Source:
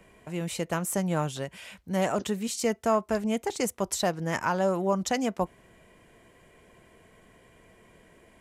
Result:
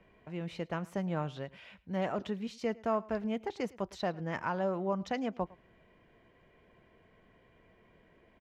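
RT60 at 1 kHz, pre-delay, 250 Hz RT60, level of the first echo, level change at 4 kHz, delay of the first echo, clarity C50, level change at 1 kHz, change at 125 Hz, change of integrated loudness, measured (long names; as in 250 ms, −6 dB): no reverb audible, no reverb audible, no reverb audible, −22.5 dB, −10.5 dB, 107 ms, no reverb audible, −7.0 dB, −6.0 dB, −7.0 dB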